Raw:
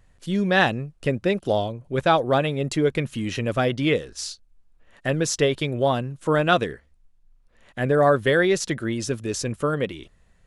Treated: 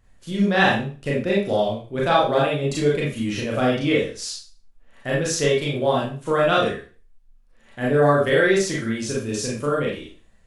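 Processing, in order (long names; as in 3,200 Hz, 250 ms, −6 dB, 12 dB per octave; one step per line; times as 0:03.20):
four-comb reverb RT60 0.37 s, combs from 28 ms, DRR −5 dB
level −4.5 dB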